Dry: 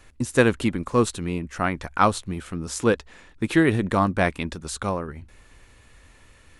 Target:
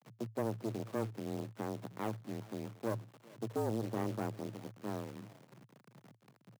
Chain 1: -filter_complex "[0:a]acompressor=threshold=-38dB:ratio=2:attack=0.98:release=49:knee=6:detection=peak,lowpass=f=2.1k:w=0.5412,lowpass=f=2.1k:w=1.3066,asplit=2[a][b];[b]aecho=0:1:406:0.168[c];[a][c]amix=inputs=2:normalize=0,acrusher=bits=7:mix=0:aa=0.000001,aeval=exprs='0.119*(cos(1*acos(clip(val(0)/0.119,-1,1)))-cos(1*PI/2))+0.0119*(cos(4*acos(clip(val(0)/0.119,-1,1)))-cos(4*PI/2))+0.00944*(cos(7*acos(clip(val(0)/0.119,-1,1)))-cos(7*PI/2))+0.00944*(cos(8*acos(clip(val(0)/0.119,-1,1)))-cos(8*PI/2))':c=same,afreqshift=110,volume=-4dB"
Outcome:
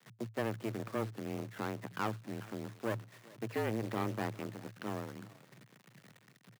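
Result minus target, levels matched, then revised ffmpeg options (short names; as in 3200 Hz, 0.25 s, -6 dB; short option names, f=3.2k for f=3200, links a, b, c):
2000 Hz band +7.0 dB
-filter_complex "[0:a]acompressor=threshold=-38dB:ratio=2:attack=0.98:release=49:knee=6:detection=peak,lowpass=f=880:w=0.5412,lowpass=f=880:w=1.3066,asplit=2[a][b];[b]aecho=0:1:406:0.168[c];[a][c]amix=inputs=2:normalize=0,acrusher=bits=7:mix=0:aa=0.000001,aeval=exprs='0.119*(cos(1*acos(clip(val(0)/0.119,-1,1)))-cos(1*PI/2))+0.0119*(cos(4*acos(clip(val(0)/0.119,-1,1)))-cos(4*PI/2))+0.00944*(cos(7*acos(clip(val(0)/0.119,-1,1)))-cos(7*PI/2))+0.00944*(cos(8*acos(clip(val(0)/0.119,-1,1)))-cos(8*PI/2))':c=same,afreqshift=110,volume=-4dB"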